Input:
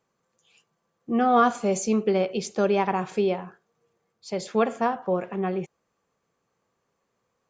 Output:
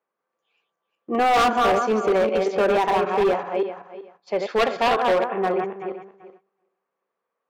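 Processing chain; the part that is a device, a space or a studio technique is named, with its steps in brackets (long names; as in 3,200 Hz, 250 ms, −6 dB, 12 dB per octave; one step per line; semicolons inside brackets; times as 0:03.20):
feedback delay that plays each chunk backwards 191 ms, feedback 42%, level −5 dB
walkie-talkie (band-pass filter 400–2,300 Hz; hard clipping −23.5 dBFS, distortion −8 dB; noise gate −57 dBFS, range −13 dB)
0:04.39–0:05.24: dynamic equaliser 3,500 Hz, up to +7 dB, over −50 dBFS, Q 1
level +8 dB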